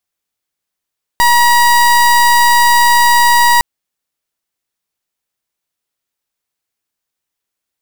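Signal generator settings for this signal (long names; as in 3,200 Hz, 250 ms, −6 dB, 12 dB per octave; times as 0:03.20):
pulse wave 957 Hz, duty 30% −8.5 dBFS 2.41 s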